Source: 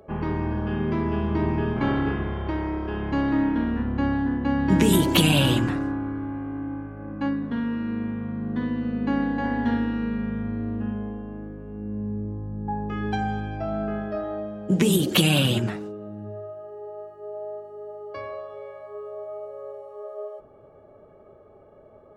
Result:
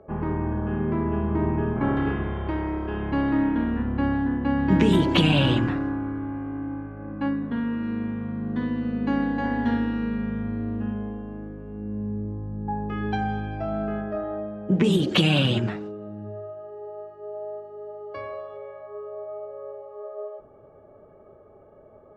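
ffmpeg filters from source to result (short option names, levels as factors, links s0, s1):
-af "asetnsamples=n=441:p=0,asendcmd='1.97 lowpass f 3500;7.83 lowpass f 8300;12.57 lowpass f 4300;14.01 lowpass f 2300;14.84 lowpass f 4300;18.57 lowpass f 2300',lowpass=1700"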